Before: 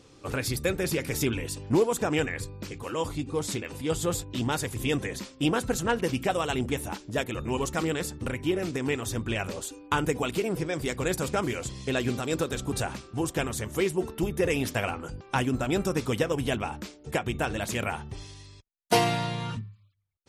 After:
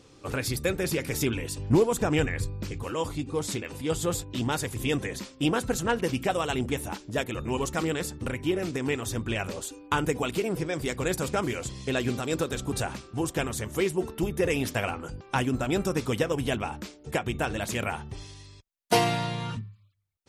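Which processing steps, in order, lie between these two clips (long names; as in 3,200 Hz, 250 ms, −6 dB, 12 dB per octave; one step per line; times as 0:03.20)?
0:01.58–0:02.93: low-shelf EQ 120 Hz +11.5 dB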